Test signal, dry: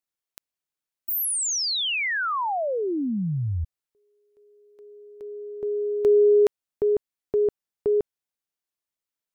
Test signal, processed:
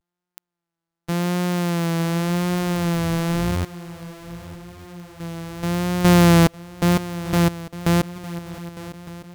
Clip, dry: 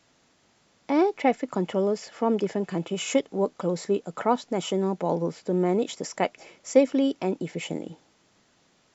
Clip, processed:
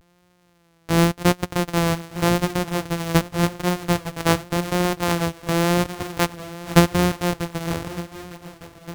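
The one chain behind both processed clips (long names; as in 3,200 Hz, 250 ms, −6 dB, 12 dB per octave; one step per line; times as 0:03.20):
samples sorted by size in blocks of 256 samples
pitch vibrato 0.88 Hz 57 cents
feedback echo with a long and a short gap by turns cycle 1,208 ms, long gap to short 3 to 1, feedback 46%, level −16.5 dB
level +4 dB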